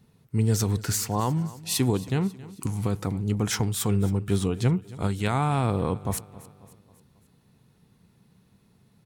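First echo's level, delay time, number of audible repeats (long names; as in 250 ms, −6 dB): −19.0 dB, 271 ms, 3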